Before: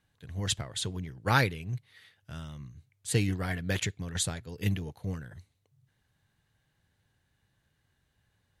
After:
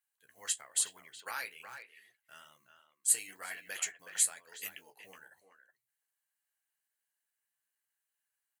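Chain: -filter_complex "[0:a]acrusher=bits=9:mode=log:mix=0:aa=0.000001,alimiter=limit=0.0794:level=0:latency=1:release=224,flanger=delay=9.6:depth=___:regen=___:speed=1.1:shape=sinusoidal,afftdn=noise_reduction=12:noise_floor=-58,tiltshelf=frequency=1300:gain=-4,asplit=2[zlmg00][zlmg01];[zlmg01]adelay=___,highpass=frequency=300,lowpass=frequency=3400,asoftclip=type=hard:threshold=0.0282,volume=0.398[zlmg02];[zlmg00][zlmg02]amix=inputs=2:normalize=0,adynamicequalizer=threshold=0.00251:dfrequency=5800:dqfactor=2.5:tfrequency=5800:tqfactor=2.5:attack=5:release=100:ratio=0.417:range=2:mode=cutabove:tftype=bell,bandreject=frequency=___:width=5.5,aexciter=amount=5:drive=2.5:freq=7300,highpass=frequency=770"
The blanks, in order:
8.4, -40, 370, 3600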